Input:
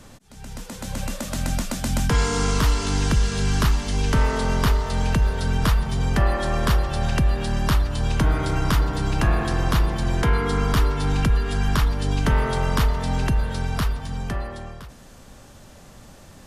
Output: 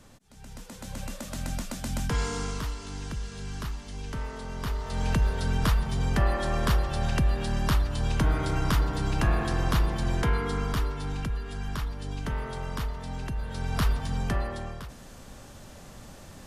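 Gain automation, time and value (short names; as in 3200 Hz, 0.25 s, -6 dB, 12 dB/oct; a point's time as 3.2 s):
2.28 s -8 dB
2.77 s -15 dB
4.52 s -15 dB
5.11 s -4.5 dB
10.11 s -4.5 dB
11.34 s -12 dB
13.33 s -12 dB
13.91 s -0.5 dB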